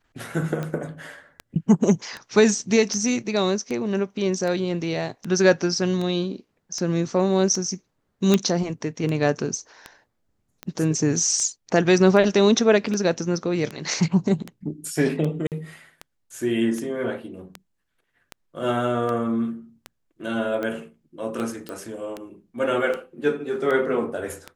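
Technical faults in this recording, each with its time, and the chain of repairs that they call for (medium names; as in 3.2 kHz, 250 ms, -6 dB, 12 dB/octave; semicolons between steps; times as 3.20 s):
tick 78 rpm -17 dBFS
8.34 s: pop -5 dBFS
15.47–15.52 s: dropout 48 ms
21.69 s: pop -19 dBFS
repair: de-click; interpolate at 15.47 s, 48 ms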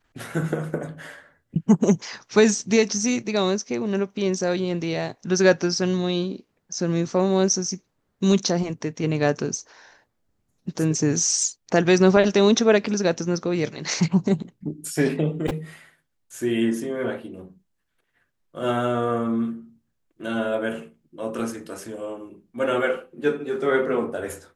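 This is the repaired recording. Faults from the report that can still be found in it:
nothing left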